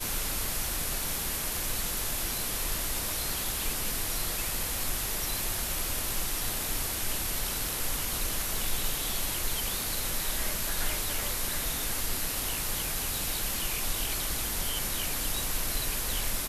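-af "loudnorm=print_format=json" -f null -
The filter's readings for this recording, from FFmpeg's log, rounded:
"input_i" : "-29.9",
"input_tp" : "-16.5",
"input_lra" : "0.2",
"input_thresh" : "-39.9",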